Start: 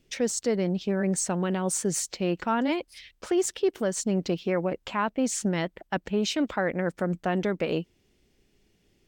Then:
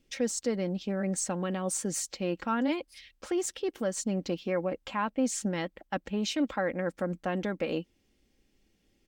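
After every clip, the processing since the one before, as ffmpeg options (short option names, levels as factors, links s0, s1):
-af "aecho=1:1:3.7:0.41,volume=0.596"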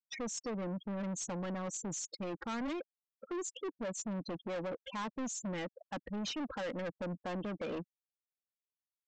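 -af "afftfilt=real='re*gte(hypot(re,im),0.0251)':imag='im*gte(hypot(re,im),0.0251)':win_size=1024:overlap=0.75,aresample=16000,asoftclip=type=tanh:threshold=0.0168,aresample=44100"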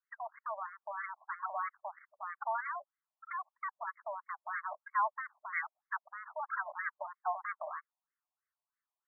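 -af "equalizer=f=3700:w=0.56:g=6.5,afftfilt=real='re*between(b*sr/1024,790*pow(1600/790,0.5+0.5*sin(2*PI*3.1*pts/sr))/1.41,790*pow(1600/790,0.5+0.5*sin(2*PI*3.1*pts/sr))*1.41)':imag='im*between(b*sr/1024,790*pow(1600/790,0.5+0.5*sin(2*PI*3.1*pts/sr))/1.41,790*pow(1600/790,0.5+0.5*sin(2*PI*3.1*pts/sr))*1.41)':win_size=1024:overlap=0.75,volume=2.99"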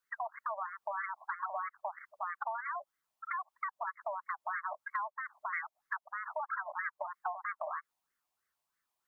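-af "acompressor=threshold=0.00794:ratio=12,volume=2.51"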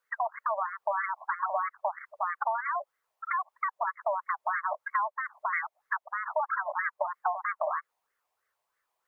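-af "equalizer=f=250:t=o:w=1:g=-7,equalizer=f=500:t=o:w=1:g=12,equalizer=f=1000:t=o:w=1:g=5,equalizer=f=2000:t=o:w=1:g=5"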